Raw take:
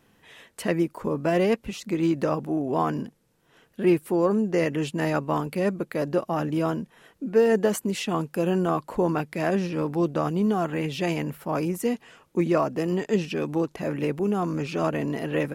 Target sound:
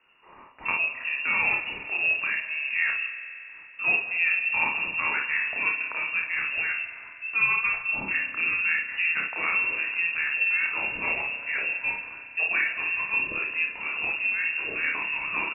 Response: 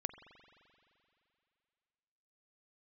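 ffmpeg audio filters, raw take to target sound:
-filter_complex "[0:a]equalizer=f=410:t=o:w=2.6:g=-9,aecho=1:1:30|57:0.596|0.562[a];[1:a]atrim=start_sample=2205,asetrate=40572,aresample=44100[b];[a][b]afir=irnorm=-1:irlink=0,lowpass=f=2.5k:t=q:w=0.5098,lowpass=f=2.5k:t=q:w=0.6013,lowpass=f=2.5k:t=q:w=0.9,lowpass=f=2.5k:t=q:w=2.563,afreqshift=-2900,volume=3dB"

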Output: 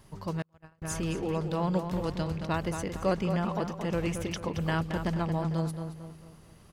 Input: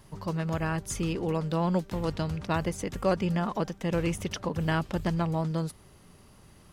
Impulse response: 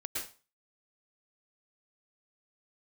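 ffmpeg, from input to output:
-filter_complex "[0:a]asplit=2[a][b];[b]adelay=224,lowpass=f=3.6k:p=1,volume=-7dB,asplit=2[c][d];[d]adelay=224,lowpass=f=3.6k:p=1,volume=0.43,asplit=2[e][f];[f]adelay=224,lowpass=f=3.6k:p=1,volume=0.43,asplit=2[g][h];[h]adelay=224,lowpass=f=3.6k:p=1,volume=0.43,asplit=2[i][j];[j]adelay=224,lowpass=f=3.6k:p=1,volume=0.43[k];[a][c][e][g][i][k]amix=inputs=6:normalize=0,asettb=1/sr,asplit=3[l][m][n];[l]atrim=end=0.424[o];[m]atrim=start=0.42:end=0.82,asetpts=PTS-STARTPTS,afade=t=in:d=0.004:c=qsin,afade=t=out:st=0.396:d=0.004:c=qsin,agate=range=-40dB:threshold=-23dB:ratio=16:detection=peak[p];[n]atrim=start=0.816[q];[o][p]acrossfade=d=0.004:c1=hsin:c2=qsin[r];[r][q]acrossfade=d=0.004:c1=qsin:c2=hsin,volume=-2dB"

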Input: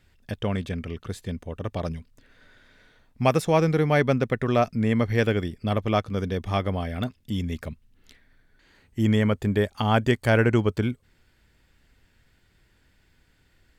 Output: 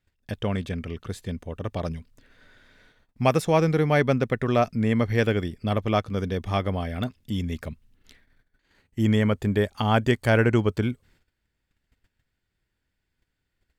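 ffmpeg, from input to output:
-af "agate=range=-16dB:threshold=-57dB:ratio=16:detection=peak"

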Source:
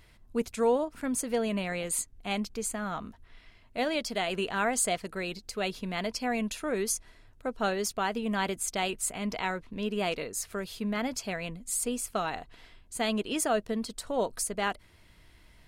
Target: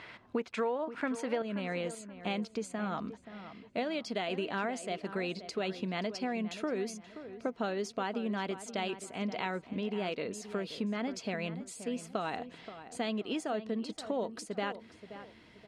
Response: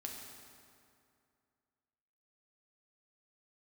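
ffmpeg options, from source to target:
-filter_complex "[0:a]asetnsamples=n=441:p=0,asendcmd='1.42 equalizer g -6',equalizer=f=1.4k:w=0.39:g=8,acompressor=threshold=-38dB:ratio=10,highpass=180,lowpass=3.8k,asplit=2[a][b];[b]adelay=528,lowpass=f=2.1k:p=1,volume=-12dB,asplit=2[c][d];[d]adelay=528,lowpass=f=2.1k:p=1,volume=0.35,asplit=2[e][f];[f]adelay=528,lowpass=f=2.1k:p=1,volume=0.35,asplit=2[g][h];[h]adelay=528,lowpass=f=2.1k:p=1,volume=0.35[i];[a][c][e][g][i]amix=inputs=5:normalize=0,volume=8dB"

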